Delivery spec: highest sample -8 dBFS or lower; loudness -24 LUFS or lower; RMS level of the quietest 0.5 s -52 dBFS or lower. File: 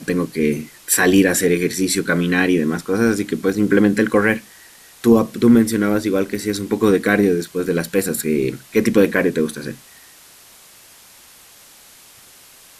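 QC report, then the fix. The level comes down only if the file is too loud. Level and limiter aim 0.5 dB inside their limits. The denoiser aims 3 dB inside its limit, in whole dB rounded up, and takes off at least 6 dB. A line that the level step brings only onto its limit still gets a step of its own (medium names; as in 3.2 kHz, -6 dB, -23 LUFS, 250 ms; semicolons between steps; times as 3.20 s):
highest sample -2.0 dBFS: fail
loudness -17.5 LUFS: fail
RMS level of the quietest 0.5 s -46 dBFS: fail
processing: trim -7 dB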